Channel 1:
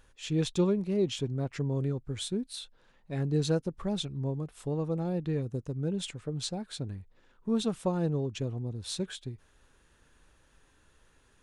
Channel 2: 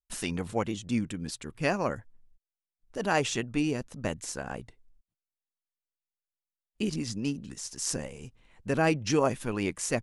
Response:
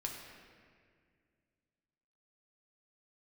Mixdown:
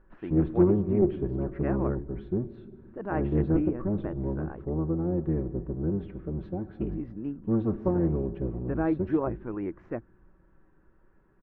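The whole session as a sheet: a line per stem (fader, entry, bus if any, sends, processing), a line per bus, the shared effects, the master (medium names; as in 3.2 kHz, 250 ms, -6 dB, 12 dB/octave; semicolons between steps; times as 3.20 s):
-4.5 dB, 0.00 s, send -7 dB, octave divider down 1 oct, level +3 dB; comb 5.3 ms, depth 42%
-6.0 dB, 0.00 s, no send, none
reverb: on, RT60 2.0 s, pre-delay 4 ms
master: low-pass 1.6 kHz 24 dB/octave; peaking EQ 330 Hz +10.5 dB 0.3 oct; loudspeaker Doppler distortion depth 0.18 ms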